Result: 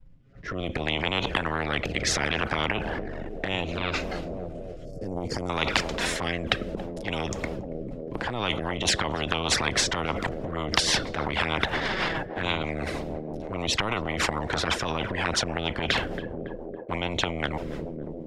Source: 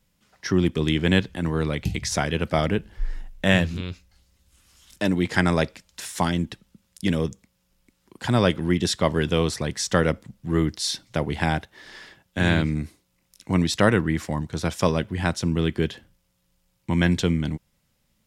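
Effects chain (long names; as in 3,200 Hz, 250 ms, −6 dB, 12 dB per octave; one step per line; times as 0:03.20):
flanger swept by the level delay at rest 7.6 ms, full sweep at −18 dBFS
high-shelf EQ 3,500 Hz −11.5 dB
downward expander −56 dBFS
gain on a spectral selection 0:04.85–0:05.50, 540–4,300 Hz −22 dB
reversed playback
downward compressor 12 to 1, threshold −34 dBFS, peak gain reduction 20 dB
reversed playback
transient designer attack −9 dB, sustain +10 dB
on a send: feedback echo with a band-pass in the loop 279 ms, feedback 80%, band-pass 600 Hz, level −19.5 dB
on the sum: rotating-speaker cabinet horn 0.65 Hz, later 6.3 Hz, at 0:07.83
RIAA equalisation playback
boost into a limiter +22 dB
every bin compressed towards the loudest bin 10 to 1
level −1 dB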